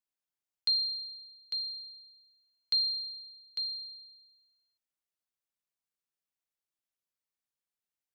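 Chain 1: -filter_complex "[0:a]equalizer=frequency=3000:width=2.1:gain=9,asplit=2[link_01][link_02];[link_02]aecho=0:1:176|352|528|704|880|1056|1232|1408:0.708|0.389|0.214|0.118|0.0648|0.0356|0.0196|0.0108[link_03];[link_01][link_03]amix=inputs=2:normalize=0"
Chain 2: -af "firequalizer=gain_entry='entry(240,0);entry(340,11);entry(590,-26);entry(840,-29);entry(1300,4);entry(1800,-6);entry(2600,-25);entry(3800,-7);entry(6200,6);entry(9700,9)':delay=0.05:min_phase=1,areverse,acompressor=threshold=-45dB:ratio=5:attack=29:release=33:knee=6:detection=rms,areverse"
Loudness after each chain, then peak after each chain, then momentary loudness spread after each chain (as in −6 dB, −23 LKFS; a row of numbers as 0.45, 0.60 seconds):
−29.0, −44.5 LKFS; −17.0, −35.0 dBFS; 19, 14 LU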